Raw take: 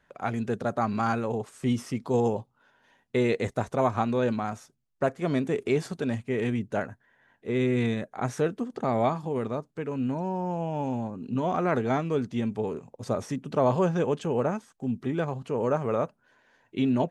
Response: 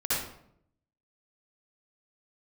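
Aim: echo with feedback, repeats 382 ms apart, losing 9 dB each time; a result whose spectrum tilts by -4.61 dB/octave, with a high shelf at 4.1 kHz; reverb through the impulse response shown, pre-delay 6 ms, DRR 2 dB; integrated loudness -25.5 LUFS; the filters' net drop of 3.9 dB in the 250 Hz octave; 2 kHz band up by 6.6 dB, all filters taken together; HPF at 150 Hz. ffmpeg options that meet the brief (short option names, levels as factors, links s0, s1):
-filter_complex "[0:a]highpass=150,equalizer=f=250:t=o:g=-4,equalizer=f=2000:t=o:g=7,highshelf=f=4100:g=6.5,aecho=1:1:382|764|1146|1528:0.355|0.124|0.0435|0.0152,asplit=2[s0][s1];[1:a]atrim=start_sample=2205,adelay=6[s2];[s1][s2]afir=irnorm=-1:irlink=0,volume=0.266[s3];[s0][s3]amix=inputs=2:normalize=0,volume=1.19"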